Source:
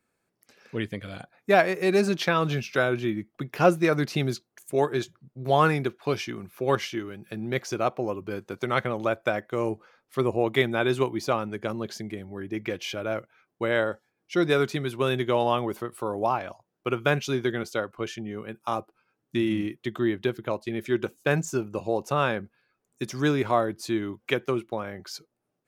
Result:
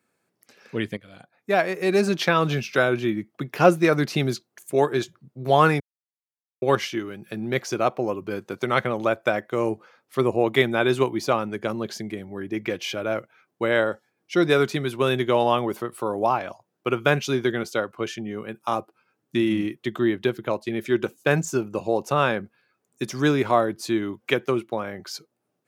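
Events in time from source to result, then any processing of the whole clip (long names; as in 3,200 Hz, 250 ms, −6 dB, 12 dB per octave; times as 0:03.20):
0:00.97–0:02.27: fade in, from −15 dB
0:05.80–0:06.62: silence
whole clip: high-pass filter 110 Hz; level +3.5 dB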